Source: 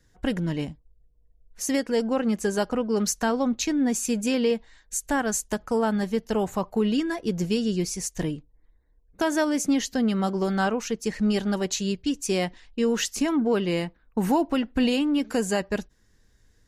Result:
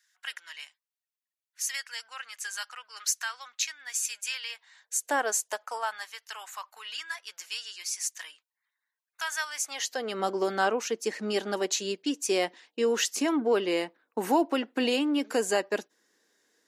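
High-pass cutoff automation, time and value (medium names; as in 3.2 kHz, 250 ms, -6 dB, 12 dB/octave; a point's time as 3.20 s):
high-pass 24 dB/octave
4.48 s 1.4 kHz
5.14 s 380 Hz
6.14 s 1.2 kHz
9.51 s 1.2 kHz
10.20 s 300 Hz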